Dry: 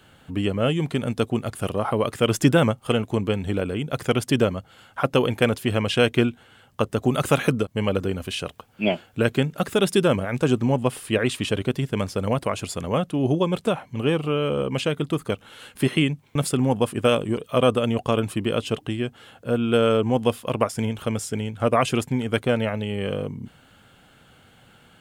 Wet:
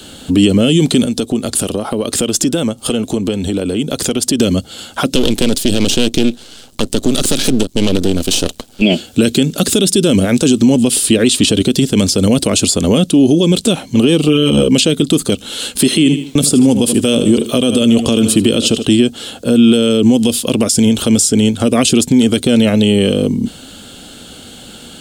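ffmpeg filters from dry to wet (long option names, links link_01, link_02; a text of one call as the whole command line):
ffmpeg -i in.wav -filter_complex "[0:a]asettb=1/sr,asplit=3[link_01][link_02][link_03];[link_01]atrim=end=1.054[link_04];[link_02]atrim=start=1.05:end=4.4,asetpts=PTS-STARTPTS,afade=type=in:duration=0.004:curve=qsin,afade=type=out:start_time=3.346:duration=0.004:curve=qsin,acompressor=threshold=-32dB:ratio=5:attack=3.2:release=140:knee=1:detection=peak[link_05];[link_03]atrim=start=4.396[link_06];[link_04][link_05]acrossfade=duration=0.004:curve1=hsin:curve2=qsin[link_07];[link_07][link_06]acrossfade=duration=0.004:curve1=qsin:curve2=hsin,asettb=1/sr,asplit=3[link_08][link_09][link_10];[link_08]atrim=end=5.154[link_11];[link_09]atrim=start=5.15:end=8.82,asetpts=PTS-STARTPTS,afade=type=in:duration=0.004:curve=qsin,afade=type=out:start_time=3.666:duration=0.004:curve=qsin,aeval=exprs='max(val(0),0)':channel_layout=same[link_12];[link_10]atrim=start=8.816[link_13];[link_11][link_12]acrossfade=duration=0.004:curve1=hsin:curve2=qsin[link_14];[link_14][link_13]acrossfade=duration=0.004:curve1=qsin:curve2=hsin,asettb=1/sr,asplit=3[link_15][link_16][link_17];[link_15]atrim=end=14.274[link_18];[link_16]atrim=start=14.27:end=14.68,asetpts=PTS-STARTPTS,afade=type=in:duration=0.004:curve=qsin,afade=type=out:start_time=0.406:duration=0.004:curve=qsin,asplit=2[link_19][link_20];[link_20]adelay=13,volume=-2dB[link_21];[link_19][link_21]amix=inputs=2:normalize=0,atrim=end_sample=18081[link_22];[link_17]atrim=start=14.676[link_23];[link_18][link_22]acrossfade=duration=0.004:curve1=hsin:curve2=qsin[link_24];[link_24][link_23]acrossfade=duration=0.004:curve1=qsin:curve2=hsin,asettb=1/sr,asplit=3[link_25][link_26][link_27];[link_25]atrim=end=15.914[link_28];[link_26]atrim=start=15.91:end=18.86,asetpts=PTS-STARTPTS,afade=type=in:duration=0.004:curve=qsin,afade=type=out:start_time=2.946:duration=0.004:curve=qsin,aecho=1:1:77|154|231:0.178|0.0605|0.0206,atrim=end_sample=130095[link_29];[link_27]atrim=start=18.856[link_30];[link_28][link_29]acrossfade=duration=0.004:curve1=hsin:curve2=qsin[link_31];[link_31][link_30]acrossfade=duration=0.004:curve1=qsin:curve2=hsin,equalizer=frequency=125:width_type=o:width=1:gain=-10,equalizer=frequency=250:width_type=o:width=1:gain=6,equalizer=frequency=1000:width_type=o:width=1:gain=-7,equalizer=frequency=2000:width_type=o:width=1:gain=-9,equalizer=frequency=4000:width_type=o:width=1:gain=8,equalizer=frequency=8000:width_type=o:width=1:gain=8,acrossover=split=430|1800[link_32][link_33][link_34];[link_32]acompressor=threshold=-21dB:ratio=4[link_35];[link_33]acompressor=threshold=-38dB:ratio=4[link_36];[link_34]acompressor=threshold=-28dB:ratio=4[link_37];[link_35][link_36][link_37]amix=inputs=3:normalize=0,alimiter=level_in=20dB:limit=-1dB:release=50:level=0:latency=1,volume=-1dB" out.wav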